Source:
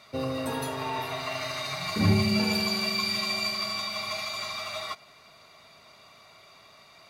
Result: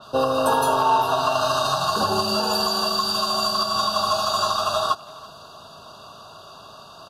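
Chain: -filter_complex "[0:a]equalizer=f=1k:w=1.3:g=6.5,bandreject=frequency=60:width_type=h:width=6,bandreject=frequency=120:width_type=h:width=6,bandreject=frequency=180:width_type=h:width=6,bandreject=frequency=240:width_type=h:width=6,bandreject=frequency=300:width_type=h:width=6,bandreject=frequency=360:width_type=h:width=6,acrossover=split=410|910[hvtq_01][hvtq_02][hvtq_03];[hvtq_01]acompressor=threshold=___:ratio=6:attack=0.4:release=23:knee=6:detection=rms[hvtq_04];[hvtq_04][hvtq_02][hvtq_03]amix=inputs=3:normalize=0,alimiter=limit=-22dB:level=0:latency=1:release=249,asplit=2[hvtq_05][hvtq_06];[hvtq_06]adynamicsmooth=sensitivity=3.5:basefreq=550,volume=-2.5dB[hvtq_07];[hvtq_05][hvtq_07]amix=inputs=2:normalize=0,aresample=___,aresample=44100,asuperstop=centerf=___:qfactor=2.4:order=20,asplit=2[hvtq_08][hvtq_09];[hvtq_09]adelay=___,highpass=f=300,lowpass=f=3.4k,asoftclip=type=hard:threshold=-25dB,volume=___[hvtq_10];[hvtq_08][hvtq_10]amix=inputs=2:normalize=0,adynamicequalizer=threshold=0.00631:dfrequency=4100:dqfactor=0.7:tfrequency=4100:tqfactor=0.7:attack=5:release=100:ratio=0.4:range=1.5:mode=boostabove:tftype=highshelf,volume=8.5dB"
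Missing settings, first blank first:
-44dB, 32000, 2100, 330, -20dB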